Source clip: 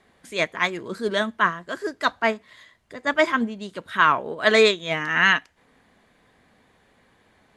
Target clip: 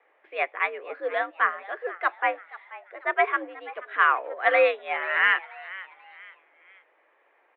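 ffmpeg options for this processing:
-filter_complex "[0:a]highpass=f=340:t=q:w=0.5412,highpass=f=340:t=q:w=1.307,lowpass=f=2.6k:t=q:w=0.5176,lowpass=f=2.6k:t=q:w=0.7071,lowpass=f=2.6k:t=q:w=1.932,afreqshift=79,asplit=4[a][b][c][d];[b]adelay=484,afreqshift=99,volume=-18dB[e];[c]adelay=968,afreqshift=198,volume=-26.2dB[f];[d]adelay=1452,afreqshift=297,volume=-34.4dB[g];[a][e][f][g]amix=inputs=4:normalize=0,volume=-2.5dB"

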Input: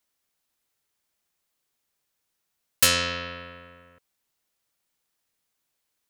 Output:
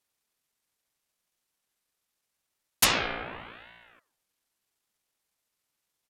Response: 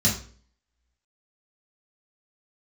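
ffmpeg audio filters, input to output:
-af "asetrate=29433,aresample=44100,atempo=1.49831,bandreject=f=64.24:t=h:w=4,bandreject=f=128.48:t=h:w=4,bandreject=f=192.72:t=h:w=4,bandreject=f=256.96:t=h:w=4,bandreject=f=321.2:t=h:w=4,bandreject=f=385.44:t=h:w=4,bandreject=f=449.68:t=h:w=4,bandreject=f=513.92:t=h:w=4,bandreject=f=578.16:t=h:w=4,bandreject=f=642.4:t=h:w=4,bandreject=f=706.64:t=h:w=4,bandreject=f=770.88:t=h:w=4,aeval=exprs='val(0)*sin(2*PI*1100*n/s+1100*0.7/0.8*sin(2*PI*0.8*n/s))':c=same"

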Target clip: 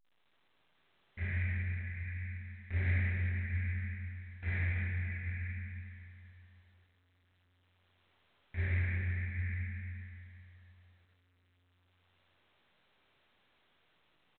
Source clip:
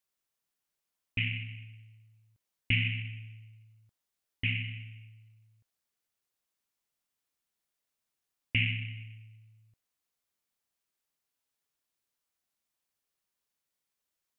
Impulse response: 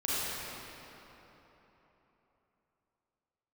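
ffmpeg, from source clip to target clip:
-filter_complex "[0:a]flanger=delay=18.5:depth=2.8:speed=1.2,acrossover=split=350[a][b];[b]alimiter=level_in=3dB:limit=-24dB:level=0:latency=1:release=253,volume=-3dB[c];[a][c]amix=inputs=2:normalize=0,dynaudnorm=f=240:g=7:m=5.5dB,aecho=1:1:462|584|793:0.178|0.211|0.266,aresample=11025,asoftclip=type=hard:threshold=-28dB,aresample=44100,asetrate=36028,aresample=44100,atempo=1.22405,acrusher=samples=3:mix=1:aa=0.000001,acrossover=split=3000[d][e];[e]acompressor=threshold=-57dB:ratio=4:attack=1:release=60[f];[d][f]amix=inputs=2:normalize=0[g];[1:a]atrim=start_sample=2205,asetrate=61740,aresample=44100[h];[g][h]afir=irnorm=-1:irlink=0,volume=-7.5dB" -ar 8000 -c:a pcm_alaw

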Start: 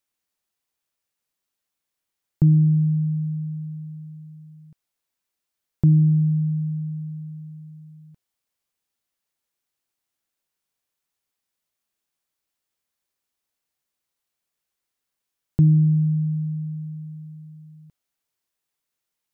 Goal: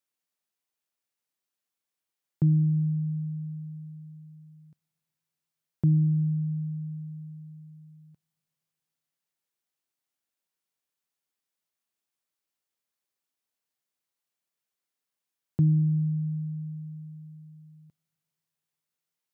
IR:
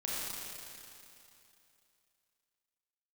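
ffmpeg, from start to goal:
-filter_complex "[0:a]highpass=110,asplit=2[a][b];[1:a]atrim=start_sample=2205[c];[b][c]afir=irnorm=-1:irlink=0,volume=-26.5dB[d];[a][d]amix=inputs=2:normalize=0,volume=-5.5dB"

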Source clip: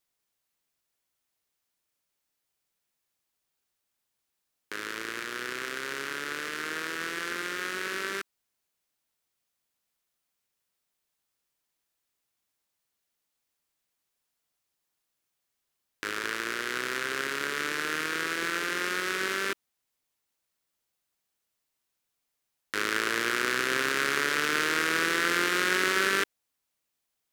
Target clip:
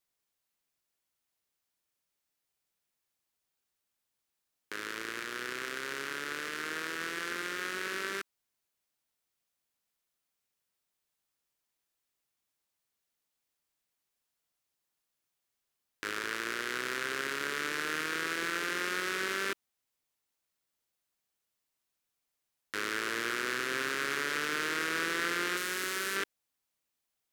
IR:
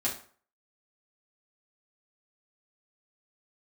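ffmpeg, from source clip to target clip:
-filter_complex "[0:a]asettb=1/sr,asplit=3[a][b][c];[a]atrim=end=25.574[d];[b]atrim=start=25.57:end=26.16,asetpts=PTS-STARTPTS,afade=t=in:d=0.004:c=qsin,afade=t=out:st=0.586:d=0.004:c=qsin,highshelf=f=5.7k:g=11.5[e];[c]atrim=start=26.156[f];[d][e]acrossfade=d=0.004:c1=hsin:c2=qsin[g];[g][f]acrossfade=d=0.004:c1=qsin:c2=hsin,alimiter=limit=-14.5dB:level=0:latency=1:release=11,volume=-3dB"

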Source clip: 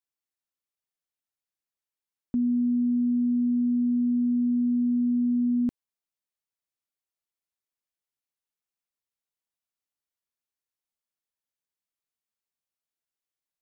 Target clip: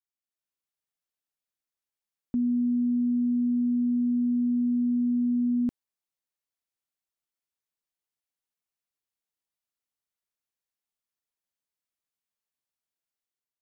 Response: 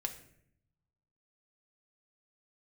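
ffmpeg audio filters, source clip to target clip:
-af "dynaudnorm=f=110:g=7:m=6.5dB,volume=-7.5dB"

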